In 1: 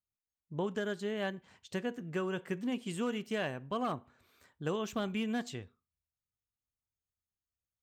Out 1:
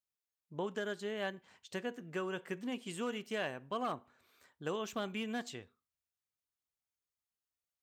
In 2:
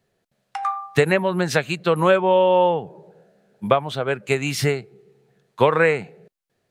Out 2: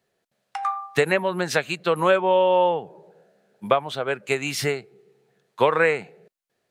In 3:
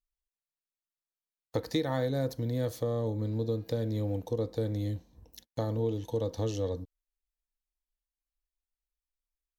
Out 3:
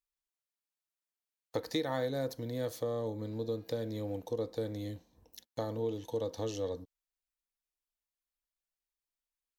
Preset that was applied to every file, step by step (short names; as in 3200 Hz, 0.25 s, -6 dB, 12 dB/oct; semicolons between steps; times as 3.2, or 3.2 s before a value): low shelf 180 Hz -12 dB; gain -1 dB